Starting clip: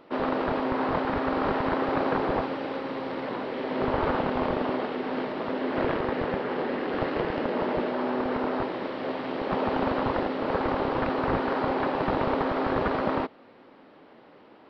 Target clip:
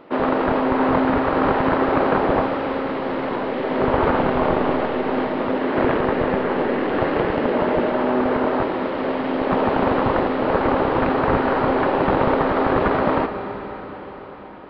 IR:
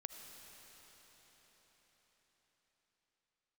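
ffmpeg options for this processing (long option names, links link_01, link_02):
-filter_complex "[0:a]asplit=2[link_01][link_02];[1:a]atrim=start_sample=2205,lowpass=3700[link_03];[link_02][link_03]afir=irnorm=-1:irlink=0,volume=8dB[link_04];[link_01][link_04]amix=inputs=2:normalize=0"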